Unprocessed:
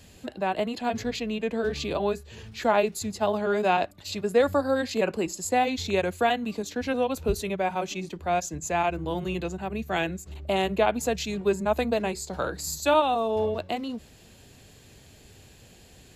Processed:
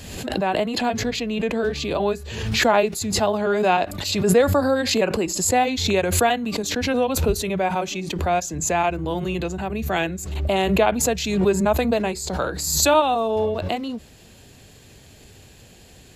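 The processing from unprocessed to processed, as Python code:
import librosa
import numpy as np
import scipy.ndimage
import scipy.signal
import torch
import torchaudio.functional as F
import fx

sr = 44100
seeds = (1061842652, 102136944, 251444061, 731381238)

y = fx.pre_swell(x, sr, db_per_s=45.0)
y = y * librosa.db_to_amplitude(4.0)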